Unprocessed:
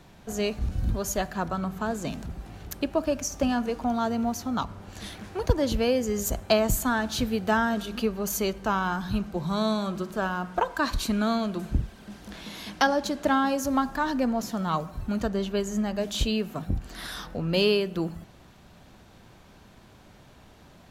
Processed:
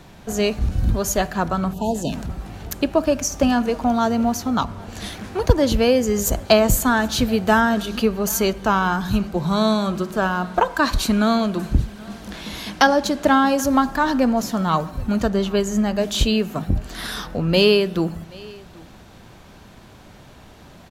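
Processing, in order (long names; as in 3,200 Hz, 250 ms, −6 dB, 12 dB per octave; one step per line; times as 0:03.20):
time-frequency box erased 0:01.73–0:02.12, 1,000–2,500 Hz
single-tap delay 780 ms −23.5 dB
level +7.5 dB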